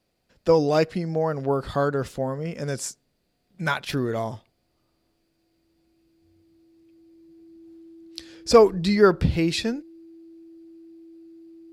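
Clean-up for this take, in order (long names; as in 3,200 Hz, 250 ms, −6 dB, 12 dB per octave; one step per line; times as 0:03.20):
clipped peaks rebuilt −5 dBFS
notch filter 330 Hz, Q 30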